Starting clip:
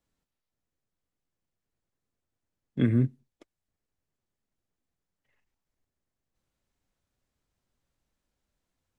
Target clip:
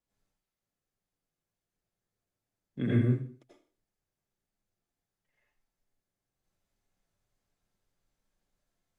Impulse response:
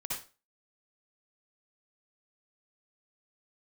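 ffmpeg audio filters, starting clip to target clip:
-filter_complex "[0:a]equalizer=f=85:w=6.2:g=-11.5[s0];[1:a]atrim=start_sample=2205,afade=t=out:st=0.35:d=0.01,atrim=end_sample=15876,asetrate=30870,aresample=44100[s1];[s0][s1]afir=irnorm=-1:irlink=0,volume=0.562"

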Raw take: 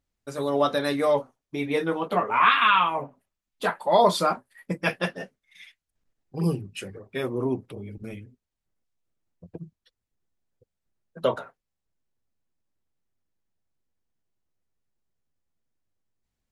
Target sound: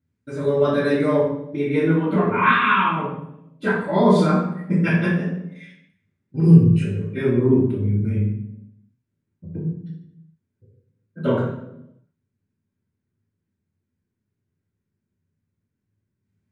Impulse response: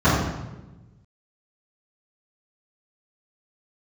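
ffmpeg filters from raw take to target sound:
-filter_complex "[0:a]equalizer=f=800:t=o:w=1.2:g=-9[s0];[1:a]atrim=start_sample=2205,asetrate=61740,aresample=44100[s1];[s0][s1]afir=irnorm=-1:irlink=0,volume=0.158"

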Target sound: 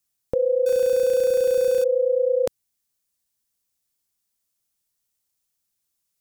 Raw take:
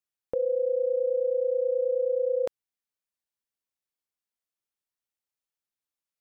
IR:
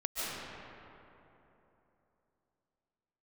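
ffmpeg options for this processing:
-filter_complex "[0:a]asettb=1/sr,asplit=3[s0][s1][s2];[s0]atrim=end=0.664[s3];[s1]atrim=start=0.66:end=1.84,asetpts=PTS-STARTPTS,afade=t=in:d=0.004:c=qsin,afade=t=out:st=1.176:d=0.004:c=qsin,aeval=exprs='val(0)+0.5*0.0133*sgn(val(0))':c=same[s4];[s2]atrim=start=1.836[s5];[s3][s4]acrossfade=d=0.004:c1=hsin:c2=qsin[s6];[s6][s5]acrossfade=d=0.004:c1=qsin:c2=hsin,bass=f=250:g=9,treble=f=4000:g=11,volume=1.78"

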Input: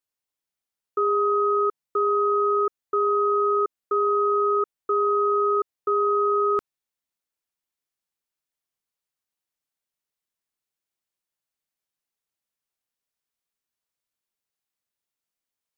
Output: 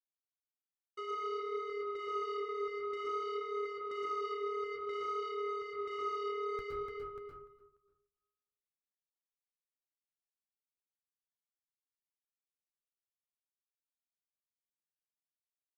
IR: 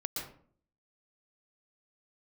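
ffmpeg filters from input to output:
-filter_complex "[0:a]aecho=1:1:294|588|882|1176|1470|1764:0.355|0.181|0.0923|0.0471|0.024|0.0122,asubboost=boost=8.5:cutoff=100,acompressor=threshold=0.0447:ratio=8,asoftclip=type=tanh:threshold=0.0224,flanger=delay=7.9:depth=7.2:regen=-50:speed=0.55:shape=sinusoidal,agate=range=0.0224:threshold=0.01:ratio=3:detection=peak[s0];[1:a]atrim=start_sample=2205[s1];[s0][s1]afir=irnorm=-1:irlink=0"

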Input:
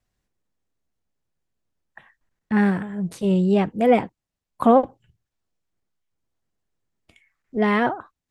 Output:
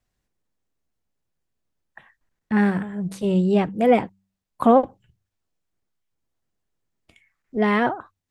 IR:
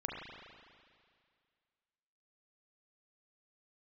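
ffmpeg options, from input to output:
-af "bandreject=f=96.63:t=h:w=4,bandreject=f=193.26:t=h:w=4"

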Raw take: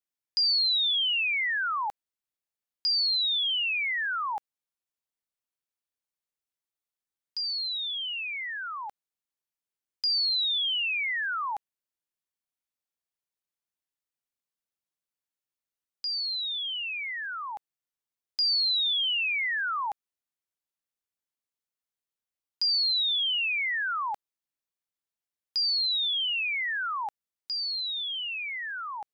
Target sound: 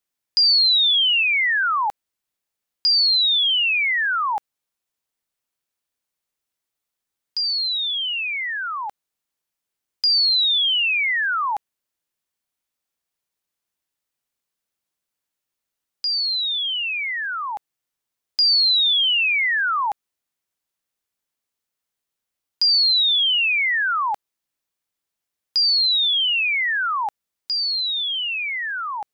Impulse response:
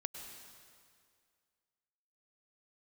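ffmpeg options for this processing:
-filter_complex "[0:a]asettb=1/sr,asplit=3[s0][s1][s2];[s0]atrim=end=1.234[s3];[s1]atrim=start=1.23:end=1.63,asetpts=PTS-STARTPTS,afade=t=in:d=0.004:c=qsin,afade=t=out:st=0.396:d=0.004:c=qsin,lowpass=f=3200:w=0.5412,lowpass=f=3200:w=1.3066[s4];[s2]atrim=start=1.626[s5];[s3][s4]acrossfade=d=0.004:c1=hsin:c2=qsin[s6];[s6][s5]acrossfade=d=0.004:c1=qsin:c2=hsin,volume=2.66"

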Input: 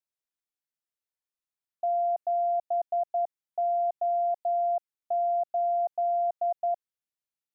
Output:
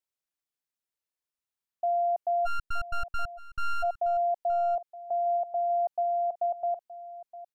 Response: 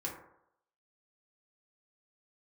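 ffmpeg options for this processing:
-filter_complex "[0:a]asplit=3[s0][s1][s2];[s0]afade=t=out:st=2.45:d=0.02[s3];[s1]aeval=exprs='abs(val(0))':c=same,afade=t=in:st=2.45:d=0.02,afade=t=out:st=3.82:d=0.02[s4];[s2]afade=t=in:st=3.82:d=0.02[s5];[s3][s4][s5]amix=inputs=3:normalize=0,aecho=1:1:920:0.15"

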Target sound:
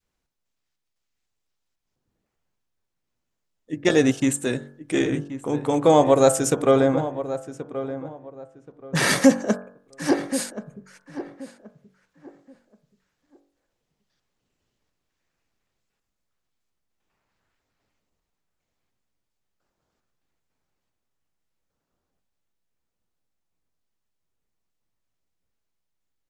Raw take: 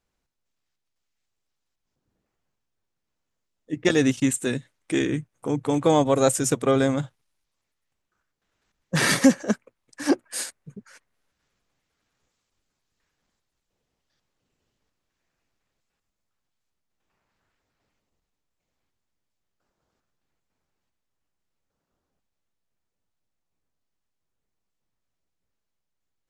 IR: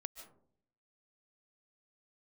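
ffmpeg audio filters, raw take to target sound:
-filter_complex "[0:a]asettb=1/sr,asplit=3[s0][s1][s2];[s0]atrim=end=6.804[s3];[s1]atrim=start=6.8:end=8.95,asetpts=PTS-STARTPTS,afade=t=in:d=0.004:c=qsin,afade=t=out:st=2.146:d=0.004:c=qsin,aemphasis=mode=reproduction:type=75kf[s4];[s2]atrim=start=8.946[s5];[s3][s4]acrossfade=d=0.004:c1=hsin:c2=qsin[s6];[s6][s5]acrossfade=d=0.004:c1=qsin:c2=hsin,bandreject=f=47.34:t=h:w=4,bandreject=f=94.68:t=h:w=4,bandreject=f=142.02:t=h:w=4,bandreject=f=189.36:t=h:w=4,bandreject=f=236.7:t=h:w=4,bandreject=f=284.04:t=h:w=4,bandreject=f=331.38:t=h:w=4,bandreject=f=378.72:t=h:w=4,bandreject=f=426.06:t=h:w=4,bandreject=f=473.4:t=h:w=4,bandreject=f=520.74:t=h:w=4,bandreject=f=568.08:t=h:w=4,bandreject=f=615.42:t=h:w=4,bandreject=f=662.76:t=h:w=4,bandreject=f=710.1:t=h:w=4,bandreject=f=757.44:t=h:w=4,bandreject=f=804.78:t=h:w=4,bandreject=f=852.12:t=h:w=4,bandreject=f=899.46:t=h:w=4,bandreject=f=946.8:t=h:w=4,bandreject=f=994.14:t=h:w=4,bandreject=f=1041.48:t=h:w=4,bandreject=f=1088.82:t=h:w=4,bandreject=f=1136.16:t=h:w=4,bandreject=f=1183.5:t=h:w=4,bandreject=f=1230.84:t=h:w=4,bandreject=f=1278.18:t=h:w=4,bandreject=f=1325.52:t=h:w=4,bandreject=f=1372.86:t=h:w=4,bandreject=f=1420.2:t=h:w=4,bandreject=f=1467.54:t=h:w=4,bandreject=f=1514.88:t=h:w=4,bandreject=f=1562.22:t=h:w=4,bandreject=f=1609.56:t=h:w=4,bandreject=f=1656.9:t=h:w=4,bandreject=f=1704.24:t=h:w=4,bandreject=f=1751.58:t=h:w=4,adynamicequalizer=threshold=0.0282:dfrequency=660:dqfactor=0.92:tfrequency=660:tqfactor=0.92:attack=5:release=100:ratio=0.375:range=3:mode=boostabove:tftype=bell,asplit=2[s7][s8];[s8]adelay=1078,lowpass=f=1700:p=1,volume=0.251,asplit=2[s9][s10];[s10]adelay=1078,lowpass=f=1700:p=1,volume=0.26,asplit=2[s11][s12];[s12]adelay=1078,lowpass=f=1700:p=1,volume=0.26[s13];[s7][s9][s11][s13]amix=inputs=4:normalize=0"

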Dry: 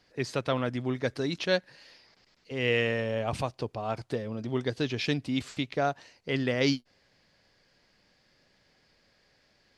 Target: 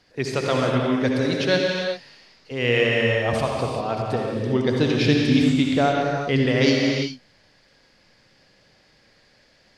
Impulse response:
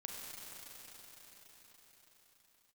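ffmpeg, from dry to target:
-filter_complex "[0:a]asettb=1/sr,asplit=3[s0][s1][s2];[s0]atrim=end=4.494[s3];[s1]atrim=start=4.49:end=6.46,asetpts=PTS-STARTPTS,afade=t=in:d=0.004:c=qsin,afade=t=out:st=1.966:d=0.004:c=qsin,lowshelf=f=370:g=5.5[s4];[s2]atrim=start=6.456[s5];[s3][s4]acrossfade=d=0.004:c1=hsin:c2=qsin[s6];[s6][s5]acrossfade=d=0.004:c1=qsin:c2=hsin[s7];[1:a]atrim=start_sample=2205,afade=t=out:st=0.27:d=0.01,atrim=end_sample=12348,asetrate=24255,aresample=44100[s8];[s7][s8]afir=irnorm=-1:irlink=0,volume=2.51"

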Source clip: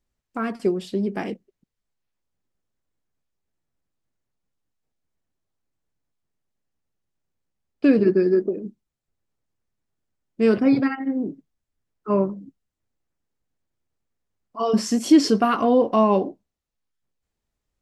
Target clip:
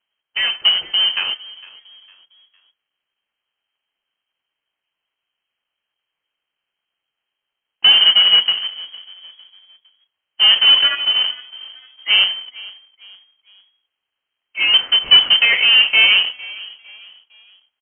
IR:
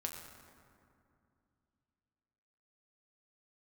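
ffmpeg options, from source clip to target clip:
-filter_complex "[0:a]aresample=16000,acrusher=bits=2:mode=log:mix=0:aa=0.000001,aresample=44100,highpass=f=82:w=0.5412,highpass=f=82:w=1.3066,asoftclip=type=tanh:threshold=0.299,lowpass=f=2800:t=q:w=0.5098,lowpass=f=2800:t=q:w=0.6013,lowpass=f=2800:t=q:w=0.9,lowpass=f=2800:t=q:w=2.563,afreqshift=-3300,bandreject=f=247.7:t=h:w=4,bandreject=f=495.4:t=h:w=4,bandreject=f=743.1:t=h:w=4,bandreject=f=990.8:t=h:w=4,bandreject=f=1238.5:t=h:w=4,bandreject=f=1486.2:t=h:w=4,bandreject=f=1733.9:t=h:w=4,bandreject=f=1981.6:t=h:w=4,bandreject=f=2229.3:t=h:w=4,asplit=2[s0][s1];[s1]asplit=3[s2][s3][s4];[s2]adelay=456,afreqshift=60,volume=0.0944[s5];[s3]adelay=912,afreqshift=120,volume=0.0367[s6];[s4]adelay=1368,afreqshift=180,volume=0.0143[s7];[s5][s6][s7]amix=inputs=3:normalize=0[s8];[s0][s8]amix=inputs=2:normalize=0,volume=2.24"

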